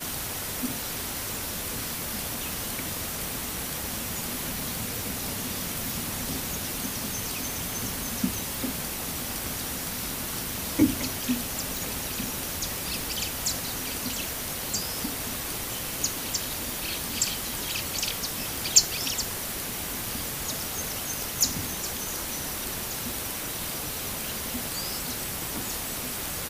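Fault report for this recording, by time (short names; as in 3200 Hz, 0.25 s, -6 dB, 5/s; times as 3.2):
2.53 pop
11.77 pop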